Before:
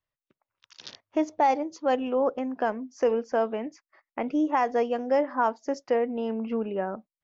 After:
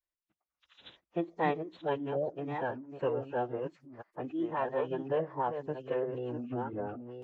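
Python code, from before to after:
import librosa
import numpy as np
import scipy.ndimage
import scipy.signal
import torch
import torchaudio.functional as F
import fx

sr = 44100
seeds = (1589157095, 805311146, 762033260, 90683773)

y = fx.reverse_delay(x, sr, ms=670, wet_db=-8.0)
y = fx.pitch_keep_formants(y, sr, semitones=-10.5)
y = y * librosa.db_to_amplitude(-7.5)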